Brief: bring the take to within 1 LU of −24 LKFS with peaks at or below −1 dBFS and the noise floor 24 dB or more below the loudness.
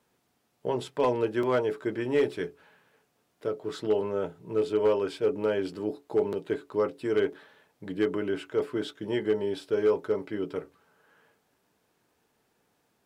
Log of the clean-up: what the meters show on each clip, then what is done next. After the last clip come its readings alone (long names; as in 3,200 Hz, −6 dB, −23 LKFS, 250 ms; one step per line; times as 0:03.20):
share of clipped samples 0.3%; peaks flattened at −17.0 dBFS; number of dropouts 1; longest dropout 2.7 ms; integrated loudness −29.5 LKFS; sample peak −17.0 dBFS; target loudness −24.0 LKFS
→ clipped peaks rebuilt −17 dBFS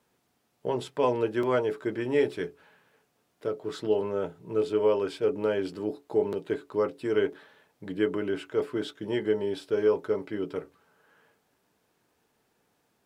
share of clipped samples 0.0%; number of dropouts 1; longest dropout 2.7 ms
→ repair the gap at 0:01.43, 2.7 ms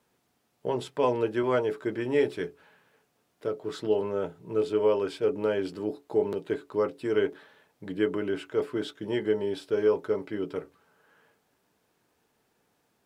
number of dropouts 0; integrated loudness −29.0 LKFS; sample peak −12.5 dBFS; target loudness −24.0 LKFS
→ level +5 dB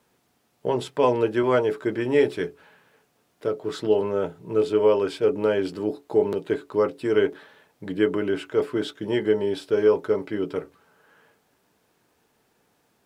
integrated loudness −24.0 LKFS; sample peak −7.5 dBFS; background noise floor −68 dBFS